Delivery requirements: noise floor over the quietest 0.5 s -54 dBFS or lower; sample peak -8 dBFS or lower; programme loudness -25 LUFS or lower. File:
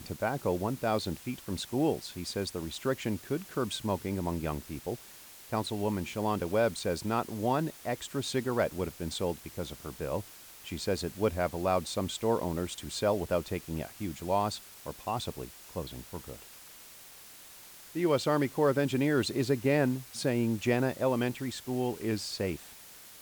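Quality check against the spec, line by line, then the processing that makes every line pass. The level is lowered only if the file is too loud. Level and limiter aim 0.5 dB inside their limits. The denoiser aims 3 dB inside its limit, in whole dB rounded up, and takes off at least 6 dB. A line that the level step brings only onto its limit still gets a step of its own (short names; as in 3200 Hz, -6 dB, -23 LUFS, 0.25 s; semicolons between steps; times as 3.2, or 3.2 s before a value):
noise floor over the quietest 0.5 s -51 dBFS: fail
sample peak -14.5 dBFS: OK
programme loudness -32.0 LUFS: OK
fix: denoiser 6 dB, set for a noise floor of -51 dBFS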